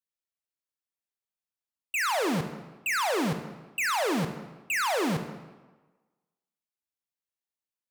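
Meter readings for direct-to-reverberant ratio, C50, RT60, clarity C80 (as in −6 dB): 7.5 dB, 9.0 dB, 1.3 s, 10.5 dB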